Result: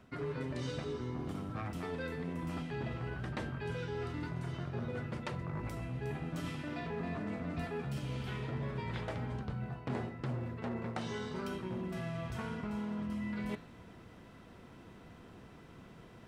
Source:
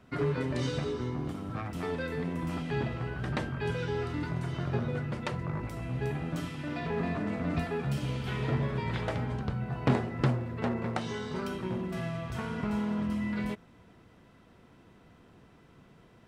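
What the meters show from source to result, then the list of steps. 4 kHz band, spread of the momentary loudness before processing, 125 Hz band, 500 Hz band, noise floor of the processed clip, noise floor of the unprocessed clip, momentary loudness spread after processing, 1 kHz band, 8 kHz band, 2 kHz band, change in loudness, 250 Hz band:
-6.0 dB, 6 LU, -6.5 dB, -6.5 dB, -55 dBFS, -58 dBFS, 16 LU, -6.0 dB, -5.5 dB, -6.0 dB, -6.5 dB, -6.5 dB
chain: de-hum 145 Hz, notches 32; reverse; compressor 4:1, threshold -41 dBFS, peak gain reduction 17.5 dB; reverse; gain +3.5 dB

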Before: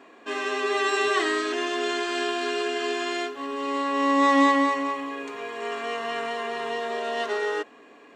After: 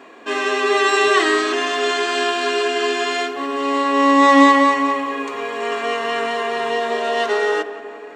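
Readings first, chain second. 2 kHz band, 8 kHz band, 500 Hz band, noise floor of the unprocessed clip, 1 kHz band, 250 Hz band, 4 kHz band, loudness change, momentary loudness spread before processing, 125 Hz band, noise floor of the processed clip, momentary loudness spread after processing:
+8.0 dB, +8.0 dB, +8.0 dB, -51 dBFS, +8.5 dB, +7.0 dB, +8.0 dB, +8.0 dB, 12 LU, n/a, -35 dBFS, 12 LU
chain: notches 50/100/150/200/250/300/350 Hz; on a send: tape echo 0.177 s, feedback 76%, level -13.5 dB, low-pass 2500 Hz; on the sum: gain +8 dB

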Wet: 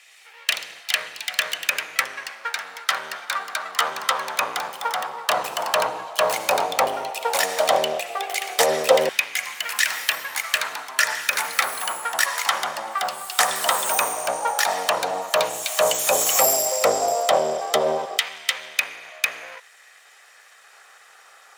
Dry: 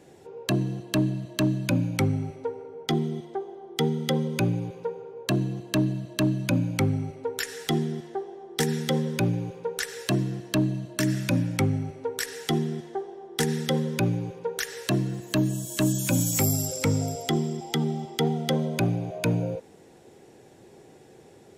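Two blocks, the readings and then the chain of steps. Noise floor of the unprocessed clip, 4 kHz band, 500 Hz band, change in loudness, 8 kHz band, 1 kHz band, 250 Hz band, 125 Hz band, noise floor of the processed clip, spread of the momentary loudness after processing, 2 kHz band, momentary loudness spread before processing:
-52 dBFS, +10.0 dB, +6.5 dB, +5.0 dB, +9.0 dB, +14.0 dB, -16.5 dB, -24.5 dB, -51 dBFS, 8 LU, +12.5 dB, 9 LU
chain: minimum comb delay 1.6 ms; LFO high-pass saw down 0.11 Hz 540–2300 Hz; echoes that change speed 0.112 s, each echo +3 st, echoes 3, each echo -6 dB; gain +9 dB

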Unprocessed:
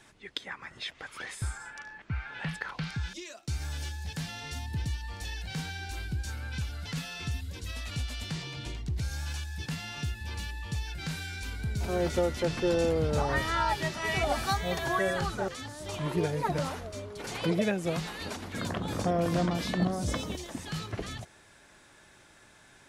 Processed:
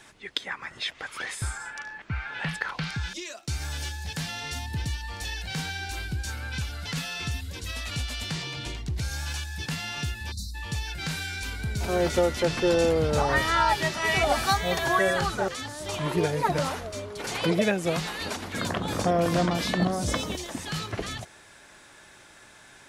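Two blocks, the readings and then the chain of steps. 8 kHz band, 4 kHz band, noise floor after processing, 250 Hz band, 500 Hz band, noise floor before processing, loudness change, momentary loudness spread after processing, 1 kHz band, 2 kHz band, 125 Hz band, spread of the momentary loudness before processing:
+6.5 dB, +6.5 dB, -52 dBFS, +3.0 dB, +4.5 dB, -58 dBFS, +4.5 dB, 11 LU, +6.0 dB, +6.5 dB, +2.0 dB, 11 LU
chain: spectral delete 10.31–10.55, 260–3600 Hz; low shelf 370 Hz -5 dB; gain +6.5 dB

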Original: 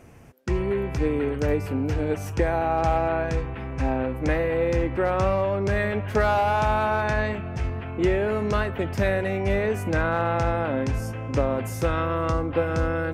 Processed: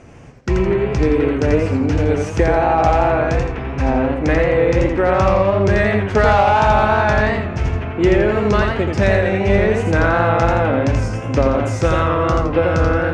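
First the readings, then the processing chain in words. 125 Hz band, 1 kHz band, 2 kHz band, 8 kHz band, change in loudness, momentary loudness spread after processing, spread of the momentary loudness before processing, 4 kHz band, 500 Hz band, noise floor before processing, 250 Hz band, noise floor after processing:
+8.5 dB, +9.0 dB, +8.5 dB, n/a, +8.5 dB, 5 LU, 6 LU, +9.0 dB, +8.5 dB, -33 dBFS, +9.0 dB, -26 dBFS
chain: LPF 7500 Hz 24 dB/oct; warbling echo 85 ms, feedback 36%, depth 120 cents, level -4 dB; gain +7 dB

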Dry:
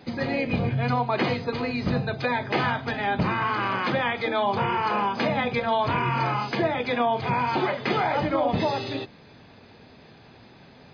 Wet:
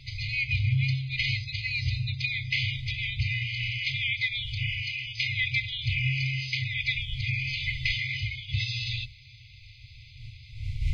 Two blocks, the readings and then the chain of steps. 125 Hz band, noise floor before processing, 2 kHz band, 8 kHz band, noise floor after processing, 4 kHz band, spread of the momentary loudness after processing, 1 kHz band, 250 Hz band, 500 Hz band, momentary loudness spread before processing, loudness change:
+1.5 dB, -51 dBFS, +0.5 dB, n/a, -50 dBFS, +4.5 dB, 6 LU, under -40 dB, under -15 dB, under -40 dB, 3 LU, -3.5 dB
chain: wind noise 350 Hz -40 dBFS; FFT band-reject 130–2000 Hz; gain +4.5 dB

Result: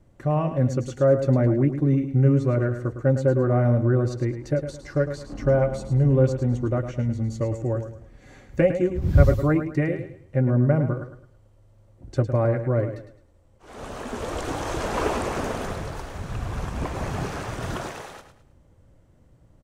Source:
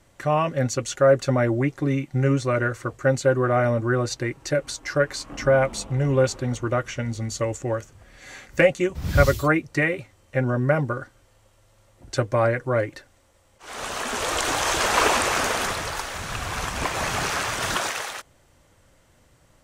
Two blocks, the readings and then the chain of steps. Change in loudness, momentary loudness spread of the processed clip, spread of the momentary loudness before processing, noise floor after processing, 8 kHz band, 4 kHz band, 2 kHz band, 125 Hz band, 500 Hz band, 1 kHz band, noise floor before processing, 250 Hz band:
0.0 dB, 13 LU, 10 LU, -56 dBFS, under -10 dB, under -10 dB, -10.5 dB, +4.5 dB, -1.5 dB, -6.5 dB, -59 dBFS, +2.5 dB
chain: tilt shelf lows +9.5 dB, about 740 Hz; on a send: feedback echo 0.107 s, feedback 32%, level -9.5 dB; on the sum: gain -5 dB

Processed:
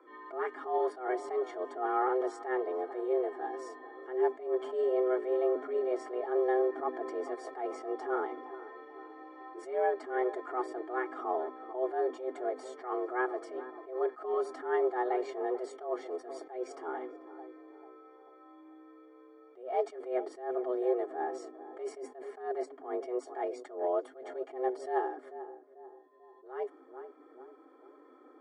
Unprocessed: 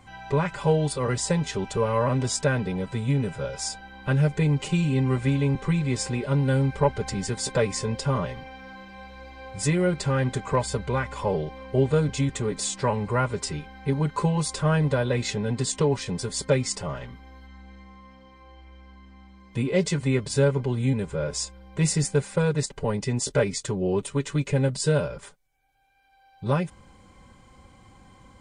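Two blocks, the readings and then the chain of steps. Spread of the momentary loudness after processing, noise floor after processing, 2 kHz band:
17 LU, -57 dBFS, -10.5 dB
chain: frequency shift +250 Hz; polynomial smoothing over 41 samples; on a send: darkening echo 0.442 s, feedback 47%, low-pass 1200 Hz, level -14.5 dB; on the sum: attack slew limiter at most 130 dB/s; gain -6 dB

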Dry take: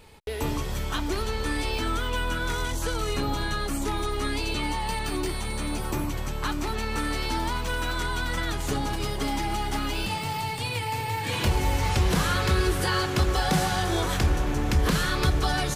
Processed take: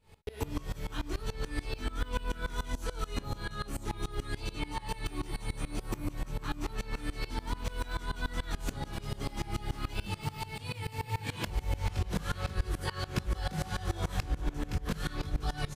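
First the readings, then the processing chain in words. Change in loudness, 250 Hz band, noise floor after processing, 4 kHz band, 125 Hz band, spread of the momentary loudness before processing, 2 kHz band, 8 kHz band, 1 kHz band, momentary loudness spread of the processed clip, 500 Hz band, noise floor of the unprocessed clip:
-10.0 dB, -10.0 dB, -48 dBFS, -12.0 dB, -8.0 dB, 6 LU, -11.5 dB, -12.5 dB, -12.0 dB, 4 LU, -11.5 dB, -31 dBFS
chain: compressor, threshold -24 dBFS, peak gain reduction 7.5 dB; tone controls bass +5 dB, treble -1 dB; doubler 20 ms -4 dB; echo 0.492 s -12.5 dB; dB-ramp tremolo swelling 6.9 Hz, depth 22 dB; gain -4 dB

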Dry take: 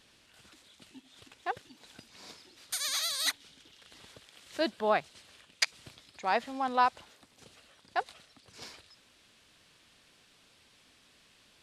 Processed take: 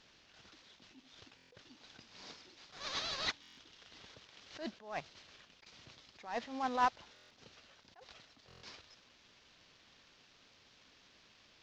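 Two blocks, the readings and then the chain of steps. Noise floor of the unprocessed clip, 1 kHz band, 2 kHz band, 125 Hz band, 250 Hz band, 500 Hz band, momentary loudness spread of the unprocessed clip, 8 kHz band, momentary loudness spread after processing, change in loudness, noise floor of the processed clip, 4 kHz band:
-64 dBFS, -7.0 dB, -8.5 dB, -3.5 dB, -6.5 dB, -11.5 dB, 20 LU, -16.0 dB, 23 LU, -8.0 dB, -66 dBFS, -8.0 dB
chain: CVSD 32 kbps; stuck buffer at 1.36/3.41/7.14/8.47, samples 1024, times 6; attack slew limiter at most 130 dB/s; gain -2.5 dB

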